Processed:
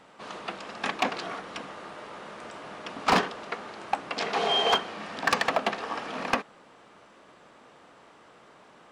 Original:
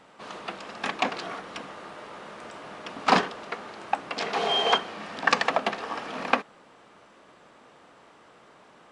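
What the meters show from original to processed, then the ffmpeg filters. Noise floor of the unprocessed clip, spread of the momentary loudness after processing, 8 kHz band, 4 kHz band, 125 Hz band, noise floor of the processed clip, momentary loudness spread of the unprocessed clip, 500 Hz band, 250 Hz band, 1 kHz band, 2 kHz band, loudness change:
-55 dBFS, 17 LU, +1.0 dB, -0.5 dB, 0.0 dB, -55 dBFS, 19 LU, -0.5 dB, -1.0 dB, -1.5 dB, -1.5 dB, -1.0 dB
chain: -af "asoftclip=type=hard:threshold=-15dB"

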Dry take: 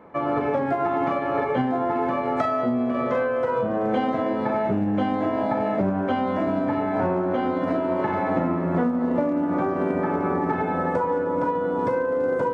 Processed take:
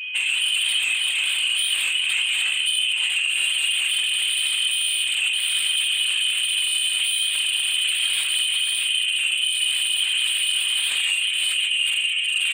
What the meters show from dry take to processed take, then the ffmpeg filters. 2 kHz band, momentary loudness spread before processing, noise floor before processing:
+12.5 dB, 1 LU, -26 dBFS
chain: -filter_complex "[0:a]asplit=2[a][b];[b]aecho=0:1:45|585|634:0.631|0.119|0.447[c];[a][c]amix=inputs=2:normalize=0,acompressor=threshold=-22dB:ratio=10,tiltshelf=f=650:g=9.5,flanger=delay=18.5:depth=5.2:speed=0.33,asoftclip=type=hard:threshold=-23.5dB,lowshelf=f=400:g=4.5,lowpass=f=2.8k:t=q:w=0.5098,lowpass=f=2.8k:t=q:w=0.6013,lowpass=f=2.8k:t=q:w=0.9,lowpass=f=2.8k:t=q:w=2.563,afreqshift=-3300,aeval=exprs='0.2*sin(PI/2*3.16*val(0)/0.2)':c=same,afftfilt=real='hypot(re,im)*cos(2*PI*random(0))':imag='hypot(re,im)*sin(2*PI*random(1))':win_size=512:overlap=0.75,aeval=exprs='val(0)+0.0355*sin(2*PI*2500*n/s)':c=same"

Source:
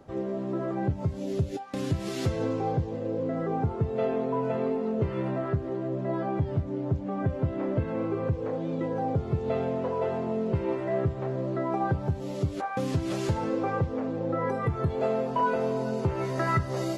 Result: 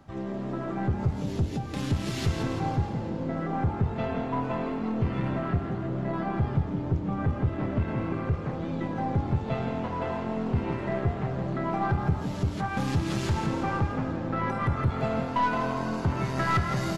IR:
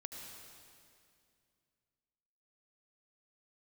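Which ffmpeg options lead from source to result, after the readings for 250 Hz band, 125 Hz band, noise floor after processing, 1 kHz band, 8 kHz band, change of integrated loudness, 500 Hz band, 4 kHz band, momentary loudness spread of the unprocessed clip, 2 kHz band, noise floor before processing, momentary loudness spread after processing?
+1.0 dB, +2.0 dB, -34 dBFS, +1.5 dB, n/a, 0.0 dB, -5.0 dB, +4.5 dB, 4 LU, +4.0 dB, -36 dBFS, 4 LU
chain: -filter_complex "[0:a]equalizer=f=460:t=o:w=0.89:g=-14.5,aeval=exprs='0.168*(cos(1*acos(clip(val(0)/0.168,-1,1)))-cos(1*PI/2))+0.0473*(cos(4*acos(clip(val(0)/0.168,-1,1)))-cos(4*PI/2))+0.0133*(cos(6*acos(clip(val(0)/0.168,-1,1)))-cos(6*PI/2))+0.00944*(cos(7*acos(clip(val(0)/0.168,-1,1)))-cos(7*PI/2))':c=same,asoftclip=type=tanh:threshold=-25dB,asplit=7[a][b][c][d][e][f][g];[b]adelay=167,afreqshift=39,volume=-8dB[h];[c]adelay=334,afreqshift=78,volume=-14dB[i];[d]adelay=501,afreqshift=117,volume=-20dB[j];[e]adelay=668,afreqshift=156,volume=-26.1dB[k];[f]adelay=835,afreqshift=195,volume=-32.1dB[l];[g]adelay=1002,afreqshift=234,volume=-38.1dB[m];[a][h][i][j][k][l][m]amix=inputs=7:normalize=0,asplit=2[n][o];[1:a]atrim=start_sample=2205,lowpass=7k[p];[o][p]afir=irnorm=-1:irlink=0,volume=-4dB[q];[n][q]amix=inputs=2:normalize=0,volume=4.5dB"

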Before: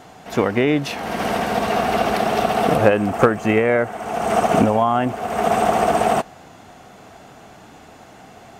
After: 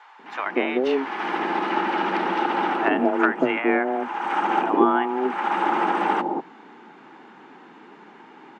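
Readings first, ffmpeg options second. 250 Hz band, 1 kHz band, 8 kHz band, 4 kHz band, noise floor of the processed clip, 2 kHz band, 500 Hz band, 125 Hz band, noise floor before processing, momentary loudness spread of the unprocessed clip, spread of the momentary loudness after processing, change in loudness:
-3.0 dB, -2.5 dB, under -20 dB, -5.5 dB, -48 dBFS, -1.0 dB, -6.5 dB, -18.5 dB, -44 dBFS, 7 LU, 7 LU, -4.0 dB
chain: -filter_complex "[0:a]lowpass=2.2k,equalizer=f=440:t=o:w=0.52:g=-11,afreqshift=130,acrossover=split=730[a][b];[a]adelay=190[c];[c][b]amix=inputs=2:normalize=0"

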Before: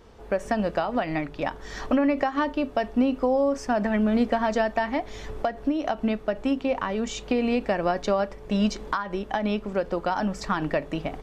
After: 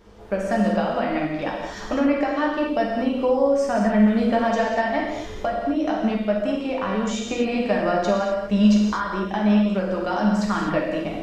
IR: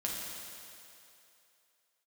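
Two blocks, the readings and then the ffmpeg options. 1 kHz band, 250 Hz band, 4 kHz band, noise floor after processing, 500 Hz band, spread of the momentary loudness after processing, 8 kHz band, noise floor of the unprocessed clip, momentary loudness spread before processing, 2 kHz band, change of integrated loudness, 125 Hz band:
+2.5 dB, +5.0 dB, +3.0 dB, -34 dBFS, +3.5 dB, 8 LU, +3.5 dB, -43 dBFS, 7 LU, +3.0 dB, +4.0 dB, +6.5 dB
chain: -filter_complex "[1:a]atrim=start_sample=2205,afade=t=out:st=0.31:d=0.01,atrim=end_sample=14112[a];[0:a][a]afir=irnorm=-1:irlink=0"

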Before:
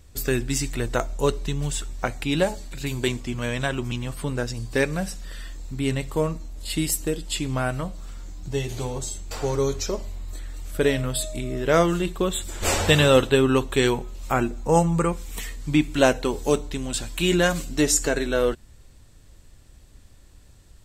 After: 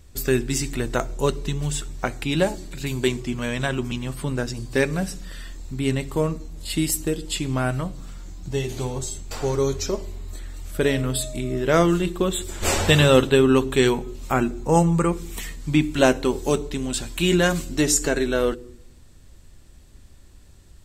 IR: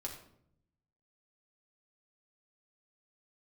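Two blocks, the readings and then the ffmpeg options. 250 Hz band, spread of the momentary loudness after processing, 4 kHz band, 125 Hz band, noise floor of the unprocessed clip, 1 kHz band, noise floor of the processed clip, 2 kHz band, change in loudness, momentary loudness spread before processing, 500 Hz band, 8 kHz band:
+2.5 dB, 13 LU, +0.5 dB, +2.0 dB, -50 dBFS, +0.5 dB, -48 dBFS, +0.5 dB, +1.5 dB, 13 LU, +1.0 dB, +0.5 dB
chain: -filter_complex "[0:a]asplit=2[a][b];[b]lowshelf=f=490:t=q:w=3:g=7.5[c];[1:a]atrim=start_sample=2205[d];[c][d]afir=irnorm=-1:irlink=0,volume=-17dB[e];[a][e]amix=inputs=2:normalize=0"

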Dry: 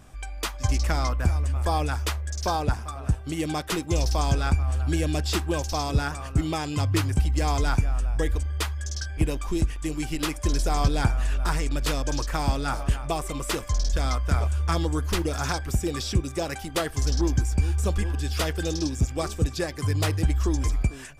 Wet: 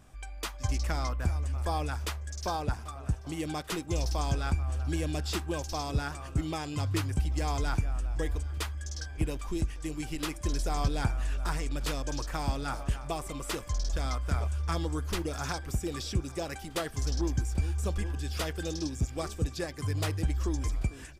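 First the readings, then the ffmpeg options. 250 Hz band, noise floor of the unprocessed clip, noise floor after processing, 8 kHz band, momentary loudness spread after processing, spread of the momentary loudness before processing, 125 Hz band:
-6.5 dB, -37 dBFS, -43 dBFS, -6.5 dB, 5 LU, 5 LU, -6.5 dB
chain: -af "aecho=1:1:788|1576|2364|3152:0.0708|0.0411|0.0238|0.0138,volume=-6.5dB"

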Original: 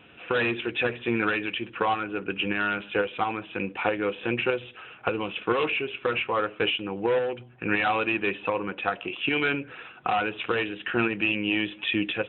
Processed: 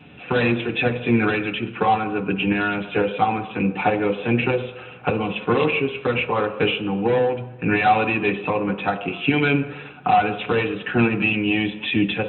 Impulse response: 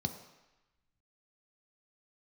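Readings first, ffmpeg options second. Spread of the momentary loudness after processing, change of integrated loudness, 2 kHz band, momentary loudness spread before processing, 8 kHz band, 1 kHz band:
6 LU, +5.5 dB, +3.5 dB, 6 LU, n/a, +7.5 dB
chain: -filter_complex "[0:a]asplit=2[a][b];[1:a]atrim=start_sample=2205,adelay=6[c];[b][c]afir=irnorm=-1:irlink=0,volume=0.5dB[d];[a][d]amix=inputs=2:normalize=0"

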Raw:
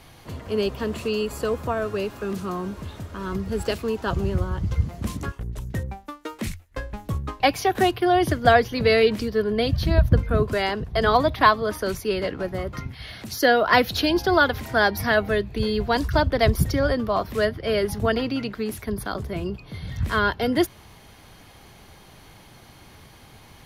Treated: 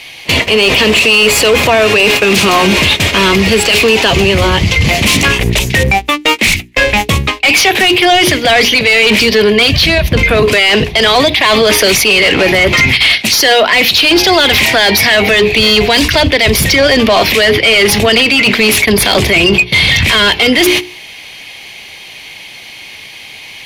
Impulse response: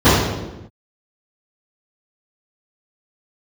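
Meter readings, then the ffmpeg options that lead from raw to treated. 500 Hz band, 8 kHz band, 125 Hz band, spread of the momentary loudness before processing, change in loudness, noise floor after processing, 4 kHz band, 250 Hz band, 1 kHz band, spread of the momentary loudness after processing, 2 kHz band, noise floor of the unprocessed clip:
+12.0 dB, +24.5 dB, +10.0 dB, 14 LU, +15.5 dB, -31 dBFS, +23.5 dB, +12.5 dB, +10.0 dB, 4 LU, +18.5 dB, -49 dBFS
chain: -filter_complex "[0:a]agate=range=-24dB:threshold=-36dB:ratio=16:detection=peak,highshelf=f=1.8k:t=q:w=3:g=9,bandreject=f=60:t=h:w=6,bandreject=f=120:t=h:w=6,bandreject=f=180:t=h:w=6,bandreject=f=240:t=h:w=6,bandreject=f=300:t=h:w=6,bandreject=f=360:t=h:w=6,bandreject=f=420:t=h:w=6,areverse,acompressor=threshold=-28dB:ratio=20,areverse,asplit=2[a][b];[b]highpass=f=720:p=1,volume=17dB,asoftclip=type=tanh:threshold=-19.5dB[c];[a][c]amix=inputs=2:normalize=0,lowpass=f=3.2k:p=1,volume=-6dB,alimiter=level_in=28dB:limit=-1dB:release=50:level=0:latency=1,volume=-1dB"

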